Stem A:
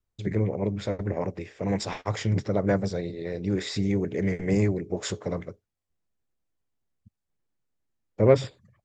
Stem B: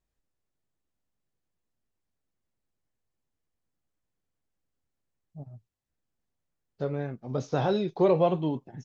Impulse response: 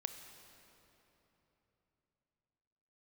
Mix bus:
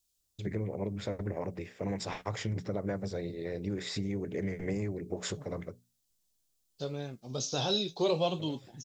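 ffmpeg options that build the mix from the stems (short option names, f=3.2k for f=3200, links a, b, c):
-filter_complex "[0:a]bandreject=f=60:t=h:w=6,bandreject=f=120:t=h:w=6,bandreject=f=180:t=h:w=6,bandreject=f=240:t=h:w=6,acompressor=threshold=-27dB:ratio=6,adelay=200,volume=-3.5dB[a];[1:a]flanger=delay=6.7:depth=3.3:regen=-76:speed=0.72:shape=triangular,aexciter=amount=10.2:drive=4.3:freq=2.9k,volume=-2.5dB,asplit=2[b][c];[c]apad=whole_len=398719[d];[a][d]sidechaincompress=threshold=-47dB:ratio=8:attack=9.4:release=249[e];[e][b]amix=inputs=2:normalize=0"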